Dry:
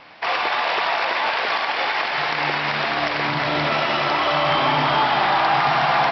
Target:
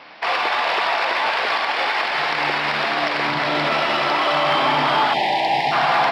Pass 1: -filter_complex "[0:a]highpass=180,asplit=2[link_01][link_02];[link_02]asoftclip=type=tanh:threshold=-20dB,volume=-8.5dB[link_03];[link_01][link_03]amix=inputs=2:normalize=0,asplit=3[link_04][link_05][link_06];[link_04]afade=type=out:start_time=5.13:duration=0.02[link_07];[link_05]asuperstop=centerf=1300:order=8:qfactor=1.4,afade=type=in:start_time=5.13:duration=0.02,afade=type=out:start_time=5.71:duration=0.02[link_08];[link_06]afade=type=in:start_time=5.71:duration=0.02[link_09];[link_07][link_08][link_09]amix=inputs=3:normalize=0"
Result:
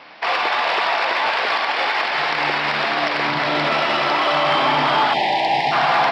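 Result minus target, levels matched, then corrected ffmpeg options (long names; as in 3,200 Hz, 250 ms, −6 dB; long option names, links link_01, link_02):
soft clipping: distortion −5 dB
-filter_complex "[0:a]highpass=180,asplit=2[link_01][link_02];[link_02]asoftclip=type=tanh:threshold=-27dB,volume=-8.5dB[link_03];[link_01][link_03]amix=inputs=2:normalize=0,asplit=3[link_04][link_05][link_06];[link_04]afade=type=out:start_time=5.13:duration=0.02[link_07];[link_05]asuperstop=centerf=1300:order=8:qfactor=1.4,afade=type=in:start_time=5.13:duration=0.02,afade=type=out:start_time=5.71:duration=0.02[link_08];[link_06]afade=type=in:start_time=5.71:duration=0.02[link_09];[link_07][link_08][link_09]amix=inputs=3:normalize=0"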